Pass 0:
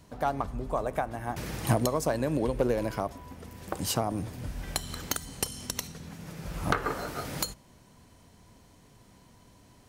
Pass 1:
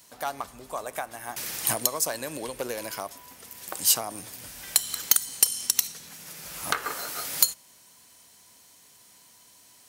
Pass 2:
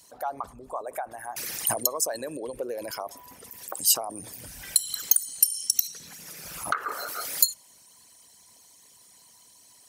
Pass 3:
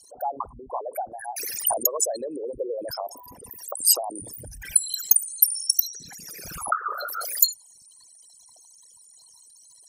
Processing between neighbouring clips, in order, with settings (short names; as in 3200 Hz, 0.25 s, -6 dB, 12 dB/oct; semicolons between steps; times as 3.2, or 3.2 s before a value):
tilt +4.5 dB/oct; gain -1.5 dB
formant sharpening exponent 2
formant sharpening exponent 3; gain +3 dB